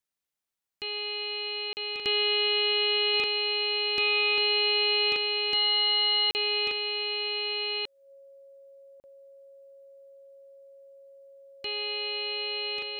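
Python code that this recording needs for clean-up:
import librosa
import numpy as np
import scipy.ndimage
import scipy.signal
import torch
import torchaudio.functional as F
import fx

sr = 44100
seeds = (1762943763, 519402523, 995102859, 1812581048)

y = fx.notch(x, sr, hz=550.0, q=30.0)
y = fx.fix_interpolate(y, sr, at_s=(1.73, 6.31, 9.0), length_ms=39.0)
y = fx.fix_echo_inverse(y, sr, delay_ms=1141, level_db=-3.5)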